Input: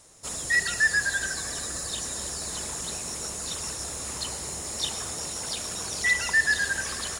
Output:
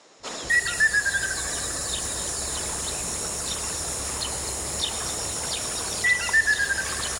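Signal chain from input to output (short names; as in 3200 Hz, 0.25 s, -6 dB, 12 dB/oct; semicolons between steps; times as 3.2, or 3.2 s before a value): three bands offset in time mids, lows, highs 0.2/0.26 s, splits 200/5700 Hz; in parallel at +2 dB: compressor, threshold -34 dBFS, peak gain reduction 15.5 dB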